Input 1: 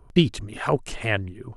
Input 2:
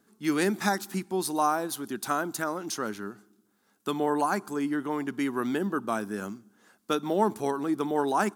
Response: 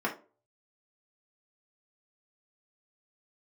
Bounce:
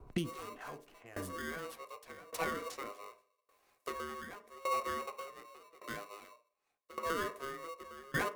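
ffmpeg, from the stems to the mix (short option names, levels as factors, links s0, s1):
-filter_complex "[0:a]alimiter=limit=0.266:level=0:latency=1:release=143,adynamicsmooth=sensitivity=5.5:basefreq=1400,volume=1.12,asplit=2[s0][s1];[s1]volume=0.112[s2];[1:a]aeval=exprs='val(0)*sgn(sin(2*PI*820*n/s))':c=same,volume=2.51,afade=t=in:st=1.46:d=0.24:silence=0.237137,afade=t=out:st=5:d=0.45:silence=0.251189,afade=t=in:st=6.54:d=0.56:silence=0.298538,asplit=3[s3][s4][s5];[s4]volume=0.299[s6];[s5]apad=whole_len=69045[s7];[s0][s7]sidechaincompress=threshold=0.00398:ratio=4:attack=16:release=819[s8];[2:a]atrim=start_sample=2205[s9];[s2][s6]amix=inputs=2:normalize=0[s10];[s10][s9]afir=irnorm=-1:irlink=0[s11];[s8][s3][s11]amix=inputs=3:normalize=0,acrossover=split=110|1800|5300[s12][s13][s14][s15];[s12]acompressor=threshold=0.00224:ratio=4[s16];[s13]acompressor=threshold=0.0316:ratio=4[s17];[s14]acompressor=threshold=0.00501:ratio=4[s18];[s15]acompressor=threshold=0.00562:ratio=4[s19];[s16][s17][s18][s19]amix=inputs=4:normalize=0,aeval=exprs='val(0)*pow(10,-22*if(lt(mod(0.86*n/s,1),2*abs(0.86)/1000),1-mod(0.86*n/s,1)/(2*abs(0.86)/1000),(mod(0.86*n/s,1)-2*abs(0.86)/1000)/(1-2*abs(0.86)/1000))/20)':c=same"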